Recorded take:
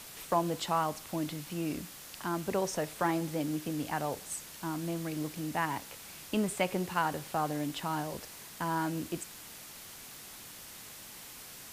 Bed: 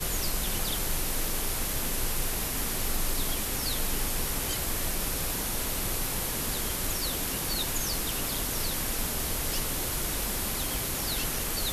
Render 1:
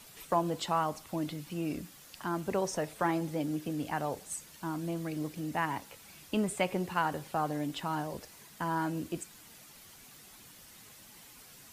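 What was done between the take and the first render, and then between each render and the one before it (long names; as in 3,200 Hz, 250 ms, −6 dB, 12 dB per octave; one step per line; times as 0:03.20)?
broadband denoise 8 dB, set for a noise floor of −49 dBFS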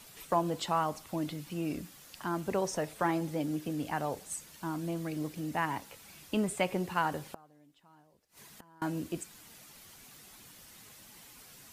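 0:07.26–0:08.82: gate with flip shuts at −35 dBFS, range −27 dB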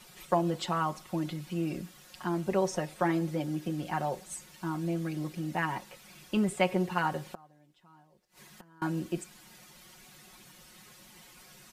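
high-shelf EQ 7,600 Hz −7 dB
comb filter 5.5 ms, depth 73%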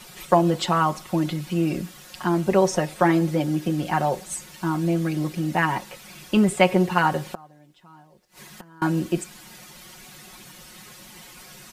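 level +9.5 dB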